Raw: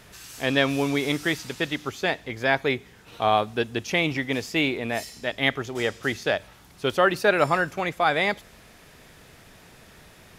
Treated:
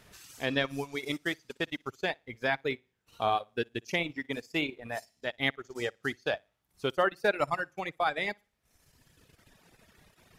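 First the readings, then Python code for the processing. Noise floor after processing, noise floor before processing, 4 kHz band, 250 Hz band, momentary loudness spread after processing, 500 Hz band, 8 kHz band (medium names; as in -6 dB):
-77 dBFS, -52 dBFS, -7.5 dB, -9.5 dB, 8 LU, -7.5 dB, -11.5 dB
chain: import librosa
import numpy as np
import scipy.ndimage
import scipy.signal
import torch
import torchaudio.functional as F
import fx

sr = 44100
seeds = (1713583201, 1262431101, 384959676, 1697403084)

y = fx.room_flutter(x, sr, wall_m=10.0, rt60_s=0.37)
y = fx.transient(y, sr, attack_db=3, sustain_db=-11)
y = fx.dereverb_blind(y, sr, rt60_s=1.7)
y = F.gain(torch.from_numpy(y), -8.0).numpy()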